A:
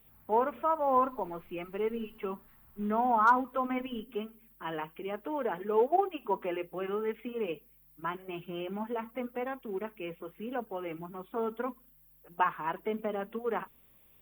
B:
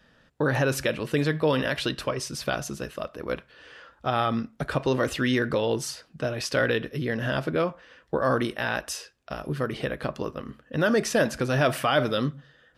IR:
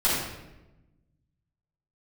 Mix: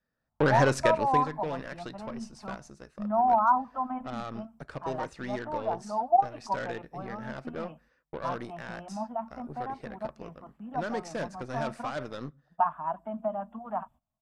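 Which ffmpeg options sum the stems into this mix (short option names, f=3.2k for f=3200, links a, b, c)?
-filter_complex "[0:a]agate=range=-19dB:threshold=-52dB:ratio=16:detection=peak,firequalizer=gain_entry='entry(230,0);entry(440,-27);entry(640,8);entry(2100,-19);entry(5500,-8)':delay=0.05:min_phase=1,adelay=200,volume=0dB[a];[1:a]agate=range=-19dB:threshold=-54dB:ratio=16:detection=peak,equalizer=f=3.1k:w=3.3:g=-13.5,aeval=exprs='0.282*(cos(1*acos(clip(val(0)/0.282,-1,1)))-cos(1*PI/2))+0.0501*(cos(5*acos(clip(val(0)/0.282,-1,1)))-cos(5*PI/2))+0.0178*(cos(6*acos(clip(val(0)/0.282,-1,1)))-cos(6*PI/2))+0.0501*(cos(7*acos(clip(val(0)/0.282,-1,1)))-cos(7*PI/2))+0.0251*(cos(8*acos(clip(val(0)/0.282,-1,1)))-cos(8*PI/2))':c=same,volume=-1dB,afade=t=out:st=0.99:d=0.25:silence=0.237137[b];[a][b]amix=inputs=2:normalize=0,lowpass=f=8.9k:w=0.5412,lowpass=f=8.9k:w=1.3066"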